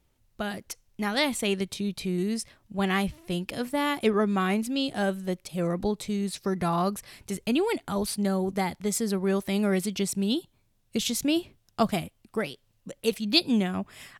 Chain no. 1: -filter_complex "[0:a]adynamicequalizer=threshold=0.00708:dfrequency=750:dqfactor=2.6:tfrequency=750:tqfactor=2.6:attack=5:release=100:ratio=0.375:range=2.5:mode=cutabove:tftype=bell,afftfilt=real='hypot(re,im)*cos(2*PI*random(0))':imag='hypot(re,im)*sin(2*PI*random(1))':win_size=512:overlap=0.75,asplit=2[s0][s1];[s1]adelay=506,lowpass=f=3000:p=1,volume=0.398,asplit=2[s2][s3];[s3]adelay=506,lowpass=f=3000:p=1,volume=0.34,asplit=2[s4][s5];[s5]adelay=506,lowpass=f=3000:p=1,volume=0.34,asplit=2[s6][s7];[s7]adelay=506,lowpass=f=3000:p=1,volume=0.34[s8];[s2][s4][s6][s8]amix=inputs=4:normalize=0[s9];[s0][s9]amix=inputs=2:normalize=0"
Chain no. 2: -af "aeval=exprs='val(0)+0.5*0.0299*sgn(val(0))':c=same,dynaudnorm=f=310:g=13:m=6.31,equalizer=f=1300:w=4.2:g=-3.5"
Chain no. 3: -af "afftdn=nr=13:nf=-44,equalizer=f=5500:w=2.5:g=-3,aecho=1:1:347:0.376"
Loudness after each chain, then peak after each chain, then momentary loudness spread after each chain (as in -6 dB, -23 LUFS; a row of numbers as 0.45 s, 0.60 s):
-34.0 LUFS, -16.5 LUFS, -28.0 LUFS; -14.5 dBFS, -1.0 dBFS, -7.0 dBFS; 9 LU, 15 LU, 9 LU